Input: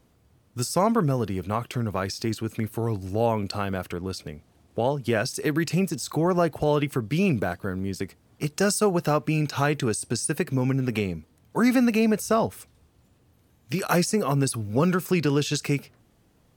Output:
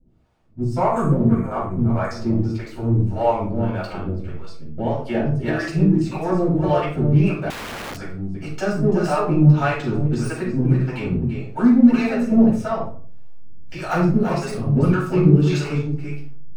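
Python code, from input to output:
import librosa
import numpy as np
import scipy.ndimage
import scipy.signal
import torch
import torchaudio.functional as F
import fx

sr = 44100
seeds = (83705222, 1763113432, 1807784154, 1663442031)

p1 = fx.self_delay(x, sr, depth_ms=0.054)
p2 = fx.peak_eq(p1, sr, hz=14000.0, db=-11.5, octaves=0.8)
p3 = p2 + fx.echo_single(p2, sr, ms=336, db=-4.5, dry=0)
p4 = fx.harmonic_tremolo(p3, sr, hz=1.7, depth_pct=100, crossover_hz=470.0)
p5 = fx.brickwall_bandstop(p4, sr, low_hz=2500.0, high_hz=6300.0, at=(0.78, 2.11))
p6 = fx.backlash(p5, sr, play_db=-25.0)
p7 = p5 + F.gain(torch.from_numpy(p6), -6.0).numpy()
p8 = fx.room_shoebox(p7, sr, seeds[0], volume_m3=380.0, walls='furnished', distance_m=7.5)
p9 = fx.overflow_wrap(p8, sr, gain_db=18.0, at=(7.5, 7.98))
p10 = fx.high_shelf(p9, sr, hz=4500.0, db=-7.5)
y = F.gain(torch.from_numpy(p10), -7.5).numpy()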